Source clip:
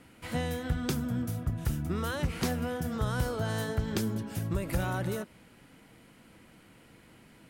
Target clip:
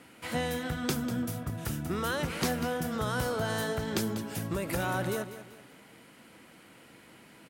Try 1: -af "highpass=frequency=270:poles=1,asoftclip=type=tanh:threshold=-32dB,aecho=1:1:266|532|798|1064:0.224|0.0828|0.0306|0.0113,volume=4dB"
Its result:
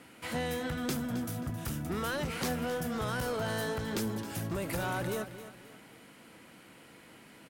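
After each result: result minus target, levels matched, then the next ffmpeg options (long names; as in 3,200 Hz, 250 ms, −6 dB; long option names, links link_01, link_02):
soft clipping: distortion +14 dB; echo 72 ms late
-af "highpass=frequency=270:poles=1,asoftclip=type=tanh:threshold=-21.5dB,aecho=1:1:266|532|798|1064:0.224|0.0828|0.0306|0.0113,volume=4dB"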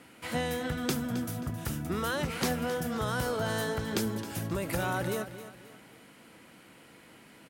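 echo 72 ms late
-af "highpass=frequency=270:poles=1,asoftclip=type=tanh:threshold=-21.5dB,aecho=1:1:194|388|582|776:0.224|0.0828|0.0306|0.0113,volume=4dB"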